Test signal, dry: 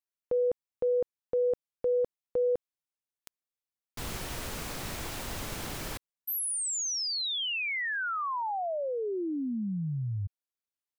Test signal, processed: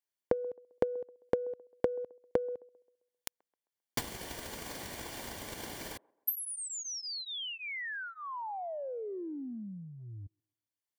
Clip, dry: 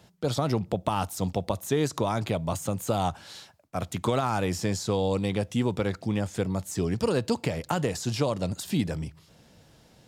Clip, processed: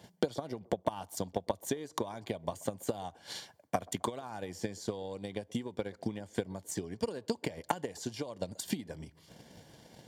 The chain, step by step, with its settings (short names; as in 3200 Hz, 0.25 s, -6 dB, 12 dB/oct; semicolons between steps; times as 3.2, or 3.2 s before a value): compressor 8:1, threshold -39 dBFS; dynamic EQ 140 Hz, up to -6 dB, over -57 dBFS, Q 2.3; transient shaper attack +12 dB, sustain -3 dB; notch comb 1300 Hz; band-limited delay 0.132 s, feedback 39%, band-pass 560 Hz, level -23.5 dB; gain +1.5 dB